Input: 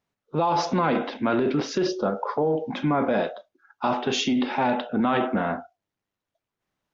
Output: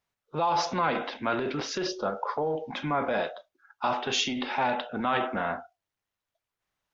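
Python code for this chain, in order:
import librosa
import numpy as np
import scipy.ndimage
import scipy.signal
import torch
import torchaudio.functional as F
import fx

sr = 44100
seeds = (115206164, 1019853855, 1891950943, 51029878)

y = fx.peak_eq(x, sr, hz=240.0, db=-10.0, octaves=2.3)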